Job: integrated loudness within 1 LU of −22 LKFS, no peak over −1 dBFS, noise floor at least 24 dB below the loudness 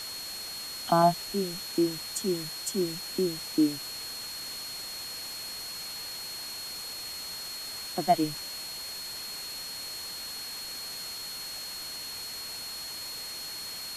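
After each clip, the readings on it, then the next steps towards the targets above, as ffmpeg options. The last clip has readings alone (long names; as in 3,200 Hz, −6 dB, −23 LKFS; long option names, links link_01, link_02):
interfering tone 4,300 Hz; level of the tone −38 dBFS; background noise floor −39 dBFS; target noise floor −56 dBFS; integrated loudness −32.0 LKFS; sample peak −10.5 dBFS; target loudness −22.0 LKFS
→ -af "bandreject=frequency=4300:width=30"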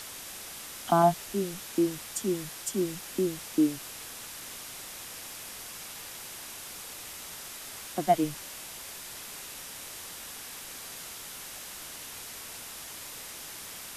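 interfering tone none found; background noise floor −43 dBFS; target noise floor −58 dBFS
→ -af "afftdn=noise_reduction=15:noise_floor=-43"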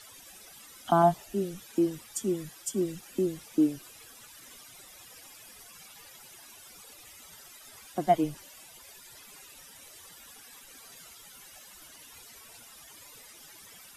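background noise floor −52 dBFS; target noise floor −54 dBFS
→ -af "afftdn=noise_reduction=6:noise_floor=-52"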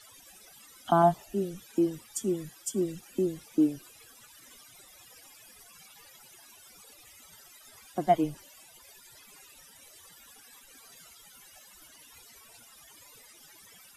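background noise floor −55 dBFS; integrated loudness −29.5 LKFS; sample peak −11.0 dBFS; target loudness −22.0 LKFS
→ -af "volume=7.5dB"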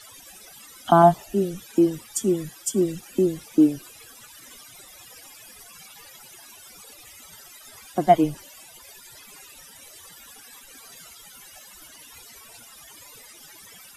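integrated loudness −22.0 LKFS; sample peak −3.5 dBFS; background noise floor −48 dBFS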